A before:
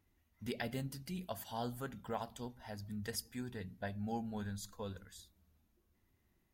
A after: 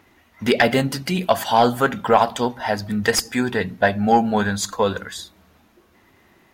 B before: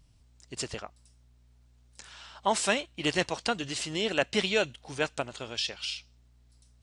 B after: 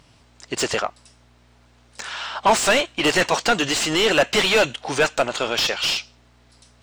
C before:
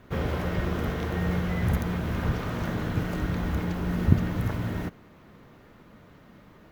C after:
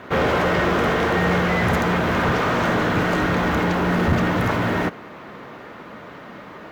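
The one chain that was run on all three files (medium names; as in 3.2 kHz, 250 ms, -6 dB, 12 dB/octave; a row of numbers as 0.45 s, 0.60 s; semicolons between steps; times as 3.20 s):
dynamic bell 7.3 kHz, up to +8 dB, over -54 dBFS, Q 1.4; overdrive pedal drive 31 dB, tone 1.8 kHz, clips at -3.5 dBFS; normalise loudness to -20 LUFS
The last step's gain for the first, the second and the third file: +6.5 dB, -1.5 dB, -4.0 dB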